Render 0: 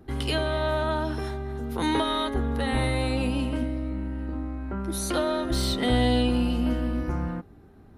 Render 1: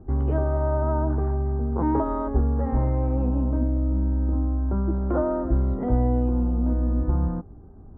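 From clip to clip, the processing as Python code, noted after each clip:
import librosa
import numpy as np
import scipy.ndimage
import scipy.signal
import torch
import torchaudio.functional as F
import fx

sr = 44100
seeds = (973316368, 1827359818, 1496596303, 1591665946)

y = scipy.signal.sosfilt(scipy.signal.cheby2(4, 80, 6400.0, 'lowpass', fs=sr, output='sos'), x)
y = fx.low_shelf(y, sr, hz=87.0, db=12.0)
y = fx.rider(y, sr, range_db=3, speed_s=0.5)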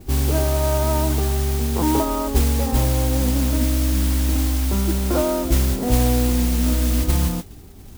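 y = fx.mod_noise(x, sr, seeds[0], snr_db=12)
y = y * librosa.db_to_amplitude(3.5)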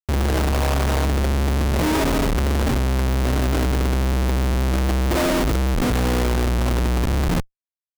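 y = fx.schmitt(x, sr, flips_db=-21.0)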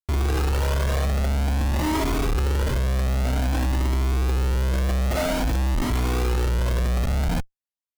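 y = fx.comb_cascade(x, sr, direction='rising', hz=0.51)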